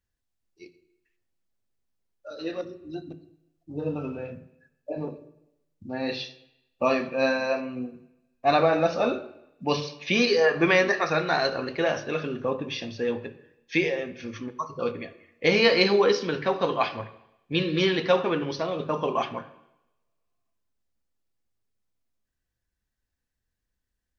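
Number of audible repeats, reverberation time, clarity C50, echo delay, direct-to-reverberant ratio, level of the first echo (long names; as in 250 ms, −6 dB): no echo audible, 0.85 s, 14.5 dB, no echo audible, 10.0 dB, no echo audible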